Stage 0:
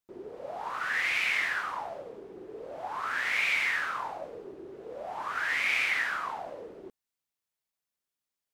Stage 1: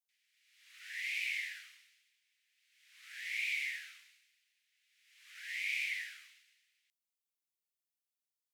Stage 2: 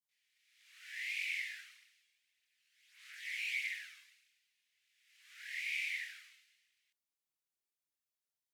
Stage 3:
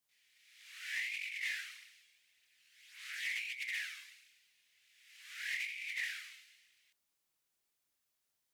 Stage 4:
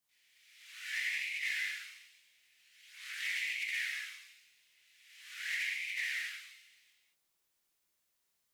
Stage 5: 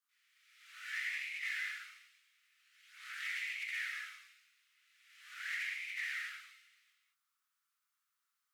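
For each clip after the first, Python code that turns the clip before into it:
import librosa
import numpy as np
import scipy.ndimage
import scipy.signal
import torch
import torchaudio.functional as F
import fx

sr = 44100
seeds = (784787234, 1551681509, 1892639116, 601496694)

y1 = scipy.signal.sosfilt(scipy.signal.butter(8, 2000.0, 'highpass', fs=sr, output='sos'), x)
y1 = fx.high_shelf(y1, sr, hz=8400.0, db=5.5)
y1 = y1 * 10.0 ** (-8.0 / 20.0)
y2 = fx.chorus_voices(y1, sr, voices=2, hz=0.82, base_ms=24, depth_ms=2.0, mix_pct=60)
y2 = y2 * 10.0 ** (1.0 / 20.0)
y3 = fx.over_compress(y2, sr, threshold_db=-43.0, ratio=-0.5)
y3 = 10.0 ** (-33.0 / 20.0) * np.tanh(y3 / 10.0 ** (-33.0 / 20.0))
y3 = y3 * 10.0 ** (5.0 / 20.0)
y4 = fx.rev_gated(y3, sr, seeds[0], gate_ms=250, shape='flat', drr_db=-1.0)
y5 = fx.ladder_highpass(y4, sr, hz=1200.0, resonance_pct=75)
y5 = y5 * 10.0 ** (5.0 / 20.0)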